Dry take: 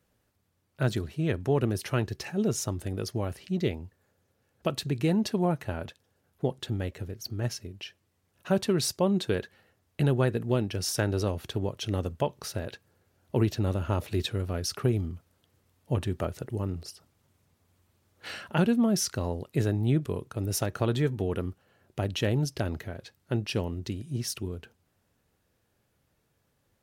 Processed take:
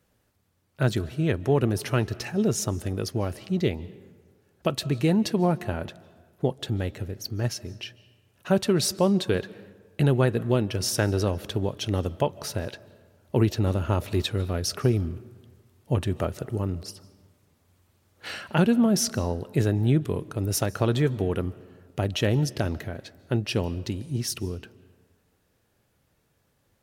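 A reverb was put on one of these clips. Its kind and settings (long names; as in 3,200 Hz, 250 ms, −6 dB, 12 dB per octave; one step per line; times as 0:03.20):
comb and all-pass reverb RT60 1.5 s, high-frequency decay 0.55×, pre-delay 110 ms, DRR 19.5 dB
level +3.5 dB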